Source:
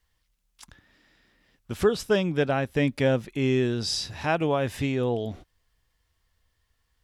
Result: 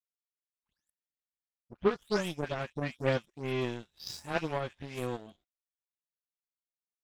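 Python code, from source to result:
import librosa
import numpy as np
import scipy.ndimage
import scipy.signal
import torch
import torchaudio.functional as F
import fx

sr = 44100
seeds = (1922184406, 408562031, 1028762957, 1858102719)

y = fx.spec_delay(x, sr, highs='late', ms=261)
y = fx.power_curve(y, sr, exponent=2.0)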